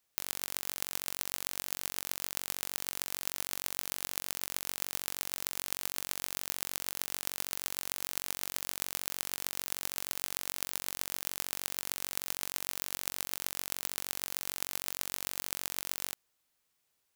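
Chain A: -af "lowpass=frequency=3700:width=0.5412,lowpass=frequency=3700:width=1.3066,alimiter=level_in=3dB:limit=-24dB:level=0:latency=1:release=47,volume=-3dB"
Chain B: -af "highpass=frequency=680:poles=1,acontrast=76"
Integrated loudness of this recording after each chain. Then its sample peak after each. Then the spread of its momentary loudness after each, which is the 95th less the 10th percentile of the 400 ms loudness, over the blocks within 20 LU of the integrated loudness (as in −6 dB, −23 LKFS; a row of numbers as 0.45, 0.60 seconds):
−48.5, −31.0 LKFS; −27.0, −2.5 dBFS; 0, 0 LU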